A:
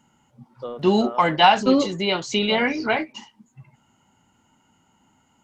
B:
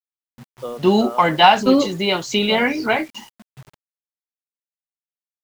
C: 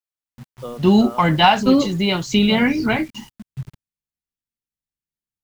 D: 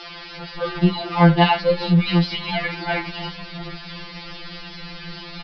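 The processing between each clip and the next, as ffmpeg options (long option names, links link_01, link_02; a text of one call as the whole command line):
ffmpeg -i in.wav -af "acrusher=bits=7:mix=0:aa=0.000001,volume=3dB" out.wav
ffmpeg -i in.wav -af "asubboost=boost=10:cutoff=220,volume=-1dB" out.wav
ffmpeg -i in.wav -af "aeval=exprs='val(0)+0.5*0.141*sgn(val(0))':channel_layout=same,aresample=11025,aresample=44100,afftfilt=real='re*2.83*eq(mod(b,8),0)':imag='im*2.83*eq(mod(b,8),0)':win_size=2048:overlap=0.75,volume=-1.5dB" out.wav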